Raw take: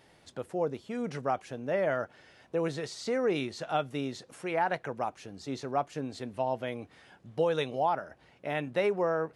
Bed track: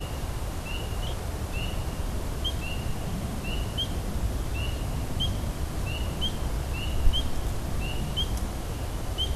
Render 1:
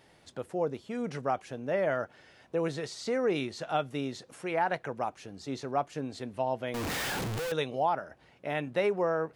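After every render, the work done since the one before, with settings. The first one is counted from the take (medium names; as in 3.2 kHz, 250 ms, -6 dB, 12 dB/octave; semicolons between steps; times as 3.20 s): 6.74–7.52 s: one-bit comparator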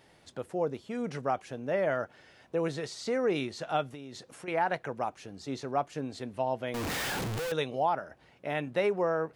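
3.92–4.48 s: compression 12:1, threshold -39 dBFS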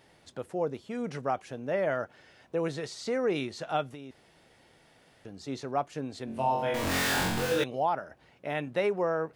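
4.11–5.25 s: room tone; 6.25–7.64 s: flutter echo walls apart 3.8 m, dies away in 0.82 s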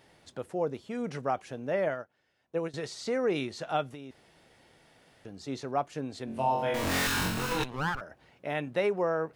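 1.88–2.74 s: upward expansion 2.5:1, over -38 dBFS; 7.07–8.01 s: comb filter that takes the minimum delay 0.74 ms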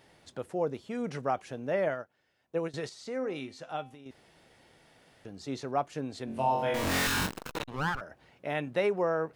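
2.89–4.06 s: feedback comb 260 Hz, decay 0.37 s; 7.26–7.68 s: transformer saturation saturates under 850 Hz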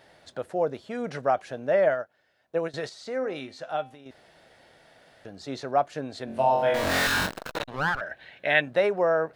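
8.01–8.61 s: time-frequency box 1.5–4.3 kHz +11 dB; fifteen-band graphic EQ 630 Hz +9 dB, 1.6 kHz +7 dB, 4 kHz +5 dB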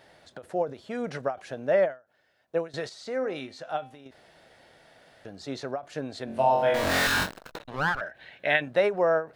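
endings held to a fixed fall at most 220 dB/s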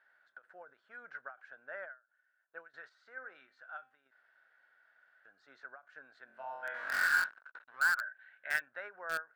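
band-pass filter 1.5 kHz, Q 9.1; in parallel at -8.5 dB: bit crusher 5-bit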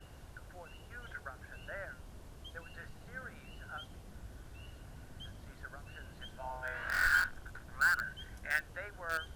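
add bed track -21 dB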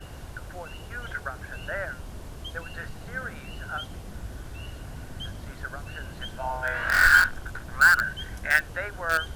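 trim +12 dB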